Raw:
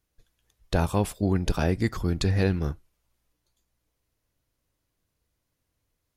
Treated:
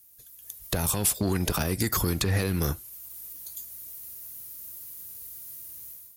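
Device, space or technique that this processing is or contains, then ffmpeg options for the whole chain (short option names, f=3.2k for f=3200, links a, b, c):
FM broadcast chain: -filter_complex "[0:a]highpass=57,dynaudnorm=f=310:g=3:m=14dB,acrossover=split=390|2500|7100[a][b][c][d];[a]acompressor=threshold=-25dB:ratio=4[e];[b]acompressor=threshold=-30dB:ratio=4[f];[c]acompressor=threshold=-46dB:ratio=4[g];[d]acompressor=threshold=-59dB:ratio=4[h];[e][f][g][h]amix=inputs=4:normalize=0,aemphasis=mode=production:type=50fm,alimiter=limit=-18.5dB:level=0:latency=1:release=46,asoftclip=type=hard:threshold=-21.5dB,lowpass=f=15k:w=0.5412,lowpass=f=15k:w=1.3066,aemphasis=mode=production:type=50fm,volume=3dB"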